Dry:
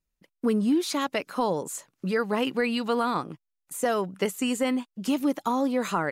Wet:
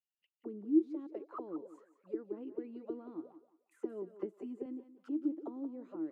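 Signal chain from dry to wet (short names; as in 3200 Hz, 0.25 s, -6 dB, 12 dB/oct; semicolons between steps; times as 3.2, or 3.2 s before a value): auto-wah 320–2900 Hz, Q 20, down, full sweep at -23 dBFS; 3.83–4.66 comb 5 ms, depth 83%; thinning echo 0.178 s, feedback 28%, high-pass 330 Hz, level -11.5 dB; gain +2 dB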